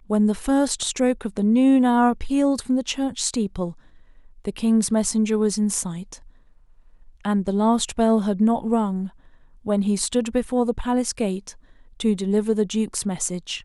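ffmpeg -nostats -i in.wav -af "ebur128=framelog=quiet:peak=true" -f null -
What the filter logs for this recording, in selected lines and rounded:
Integrated loudness:
  I:         -22.0 LUFS
  Threshold: -32.8 LUFS
Loudness range:
  LRA:         3.9 LU
  Threshold: -43.0 LUFS
  LRA low:   -24.5 LUFS
  LRA high:  -20.6 LUFS
True peak:
  Peak:       -6.4 dBFS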